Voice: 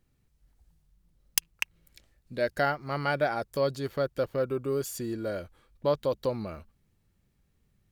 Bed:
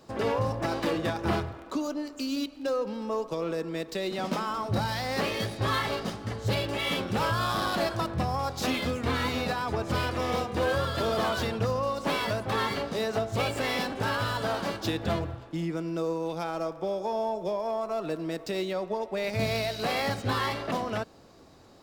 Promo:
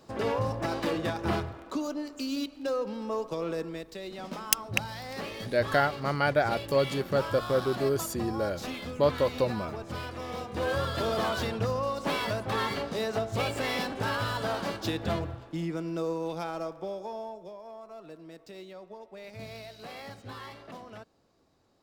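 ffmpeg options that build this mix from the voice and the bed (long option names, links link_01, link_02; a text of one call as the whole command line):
ffmpeg -i stem1.wav -i stem2.wav -filter_complex "[0:a]adelay=3150,volume=2dB[link_01];[1:a]volume=5.5dB,afade=type=out:start_time=3.62:duration=0.23:silence=0.446684,afade=type=in:start_time=10.35:duration=0.45:silence=0.446684,afade=type=out:start_time=16.33:duration=1.19:silence=0.223872[link_02];[link_01][link_02]amix=inputs=2:normalize=0" out.wav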